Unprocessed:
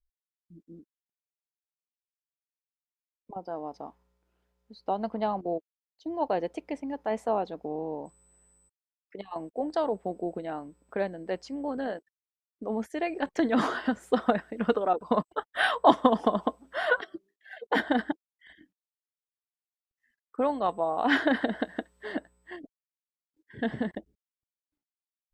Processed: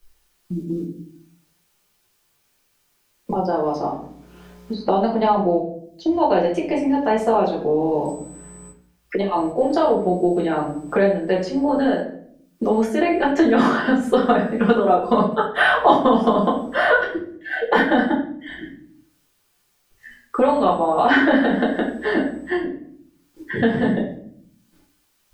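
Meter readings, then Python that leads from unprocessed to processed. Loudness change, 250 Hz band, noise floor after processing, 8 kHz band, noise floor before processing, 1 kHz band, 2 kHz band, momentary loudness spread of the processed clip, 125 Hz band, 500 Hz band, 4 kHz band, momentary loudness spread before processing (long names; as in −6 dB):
+10.0 dB, +12.0 dB, −66 dBFS, can't be measured, below −85 dBFS, +10.0 dB, +10.5 dB, 14 LU, +15.0 dB, +11.0 dB, +7.5 dB, 17 LU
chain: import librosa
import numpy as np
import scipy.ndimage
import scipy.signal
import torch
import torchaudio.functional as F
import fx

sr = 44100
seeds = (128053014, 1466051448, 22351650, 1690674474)

y = fx.room_shoebox(x, sr, seeds[0], volume_m3=45.0, walls='mixed', distance_m=1.2)
y = fx.band_squash(y, sr, depth_pct=70)
y = F.gain(torch.from_numpy(y), 4.0).numpy()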